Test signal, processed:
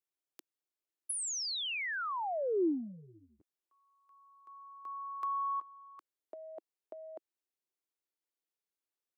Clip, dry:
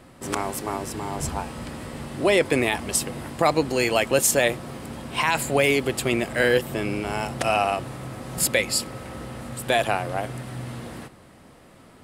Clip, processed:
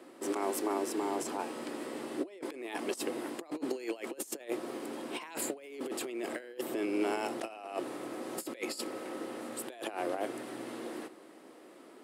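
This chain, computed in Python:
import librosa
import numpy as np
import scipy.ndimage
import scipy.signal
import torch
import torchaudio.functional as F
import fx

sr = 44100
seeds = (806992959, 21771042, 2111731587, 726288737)

y = fx.over_compress(x, sr, threshold_db=-28.0, ratio=-0.5)
y = fx.ladder_highpass(y, sr, hz=290.0, resonance_pct=55)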